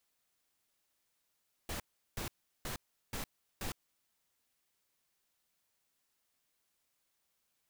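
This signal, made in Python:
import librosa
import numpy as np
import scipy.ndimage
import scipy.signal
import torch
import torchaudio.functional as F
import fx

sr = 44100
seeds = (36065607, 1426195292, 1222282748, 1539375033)

y = fx.noise_burst(sr, seeds[0], colour='pink', on_s=0.11, off_s=0.37, bursts=5, level_db=-39.5)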